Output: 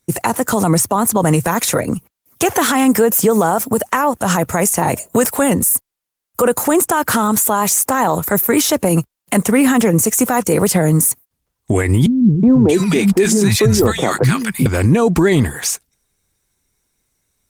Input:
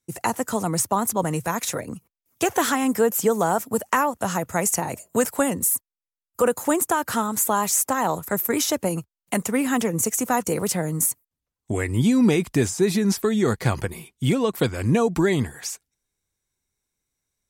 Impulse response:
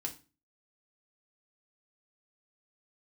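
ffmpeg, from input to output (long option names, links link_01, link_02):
-filter_complex "[0:a]asettb=1/sr,asplit=3[link_01][link_02][link_03];[link_01]atrim=end=12.064[link_04];[link_02]atrim=start=12.06:end=14.66,asetpts=PTS-STARTPTS,afade=type=in:duration=0.004:curve=qsin,afade=type=out:start_time=2.596:duration=0.004:curve=qsin,acrossover=split=200|1100[link_05][link_06][link_07];[link_06]adelay=370[link_08];[link_07]adelay=630[link_09];[link_05][link_08][link_09]amix=inputs=3:normalize=0,atrim=end_sample=114660[link_10];[link_03]atrim=start=14.656[link_11];[link_04][link_10]acrossfade=duration=0.004:curve1=hsin:curve2=qsin[link_12];[link_12][link_11]acrossfade=duration=0.004:curve1=qsin:curve2=hsin,alimiter=level_in=18dB:limit=-1dB:release=50:level=0:latency=1,volume=-3.5dB" -ar 48000 -c:a libopus -b:a 24k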